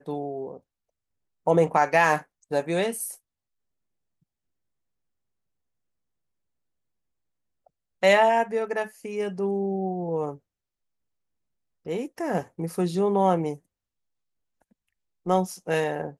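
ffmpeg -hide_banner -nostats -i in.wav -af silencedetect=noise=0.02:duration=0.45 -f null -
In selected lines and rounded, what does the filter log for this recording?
silence_start: 0.57
silence_end: 1.47 | silence_duration: 0.90
silence_start: 3.13
silence_end: 8.03 | silence_duration: 4.90
silence_start: 10.34
silence_end: 11.86 | silence_duration: 1.53
silence_start: 13.55
silence_end: 15.26 | silence_duration: 1.71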